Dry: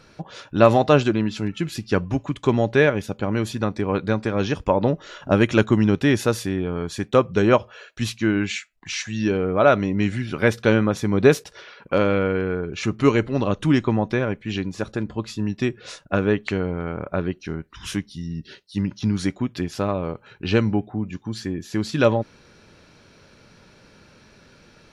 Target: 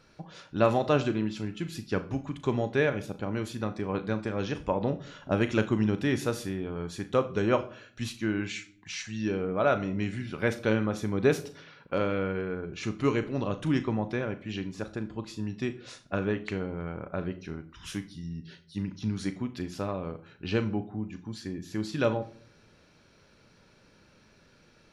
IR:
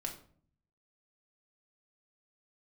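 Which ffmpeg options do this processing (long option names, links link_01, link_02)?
-filter_complex "[0:a]asplit=2[link_01][link_02];[1:a]atrim=start_sample=2205,highshelf=frequency=9600:gain=6,adelay=37[link_03];[link_02][link_03]afir=irnorm=-1:irlink=0,volume=-10dB[link_04];[link_01][link_04]amix=inputs=2:normalize=0,volume=-9dB"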